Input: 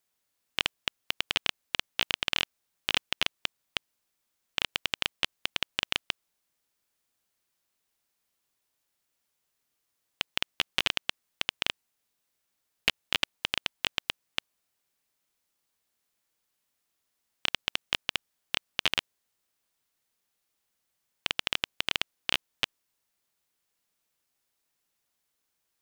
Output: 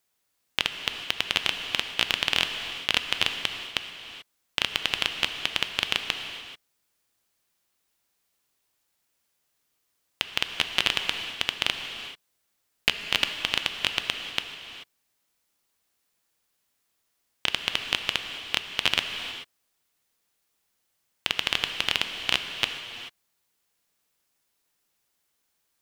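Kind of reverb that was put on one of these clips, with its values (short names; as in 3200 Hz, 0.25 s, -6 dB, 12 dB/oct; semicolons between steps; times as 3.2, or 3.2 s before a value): non-linear reverb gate 0.46 s flat, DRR 6 dB; gain +3.5 dB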